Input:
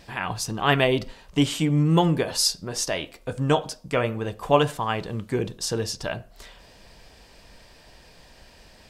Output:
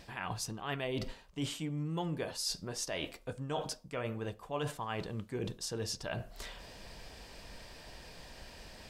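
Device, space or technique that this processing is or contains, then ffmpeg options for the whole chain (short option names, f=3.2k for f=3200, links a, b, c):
compression on the reversed sound: -af "areverse,acompressor=threshold=-36dB:ratio=5,areverse"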